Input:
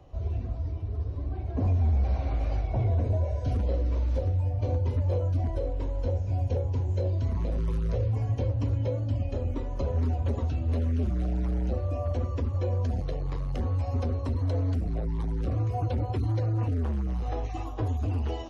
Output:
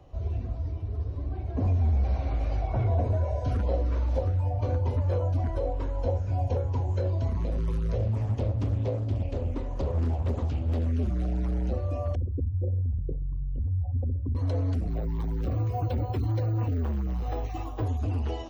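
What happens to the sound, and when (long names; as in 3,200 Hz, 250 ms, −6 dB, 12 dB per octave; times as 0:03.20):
0:02.61–0:07.30: auto-filter bell 2.6 Hz 710–1,500 Hz +10 dB
0:07.98–0:10.87: highs frequency-modulated by the lows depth 0.47 ms
0:12.15–0:14.35: spectral envelope exaggerated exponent 3
0:14.90–0:17.84: bad sample-rate conversion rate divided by 2×, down none, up hold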